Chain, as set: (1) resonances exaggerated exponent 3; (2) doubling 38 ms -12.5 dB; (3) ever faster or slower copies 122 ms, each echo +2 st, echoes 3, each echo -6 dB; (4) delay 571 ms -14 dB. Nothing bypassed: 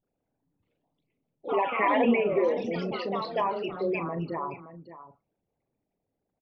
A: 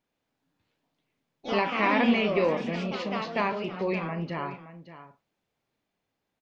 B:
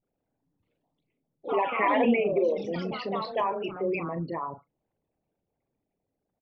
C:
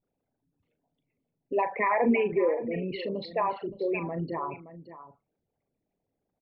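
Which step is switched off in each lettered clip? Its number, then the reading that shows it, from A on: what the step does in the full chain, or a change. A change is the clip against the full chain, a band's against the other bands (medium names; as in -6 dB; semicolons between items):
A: 1, 500 Hz band -5.0 dB; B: 4, momentary loudness spread change -6 LU; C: 3, momentary loudness spread change -5 LU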